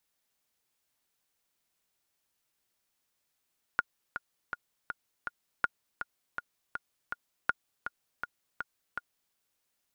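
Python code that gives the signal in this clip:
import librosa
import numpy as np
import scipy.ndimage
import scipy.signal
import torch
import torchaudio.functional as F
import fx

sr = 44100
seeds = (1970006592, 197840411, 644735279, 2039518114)

y = fx.click_track(sr, bpm=162, beats=5, bars=3, hz=1430.0, accent_db=9.5, level_db=-12.0)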